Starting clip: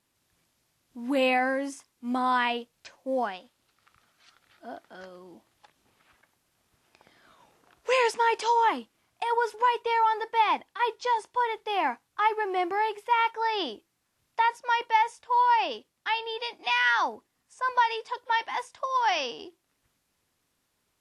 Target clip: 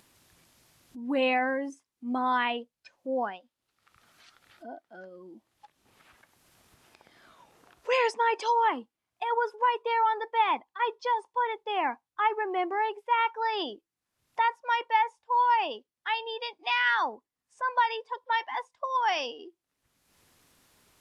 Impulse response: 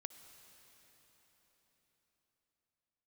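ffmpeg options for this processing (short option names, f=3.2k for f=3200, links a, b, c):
-filter_complex "[0:a]asplit=2[a][b];[1:a]atrim=start_sample=2205,atrim=end_sample=3969[c];[b][c]afir=irnorm=-1:irlink=0,volume=-7.5dB[d];[a][d]amix=inputs=2:normalize=0,afftdn=nr=16:nf=-37,acompressor=mode=upward:threshold=-37dB:ratio=2.5,volume=-3.5dB"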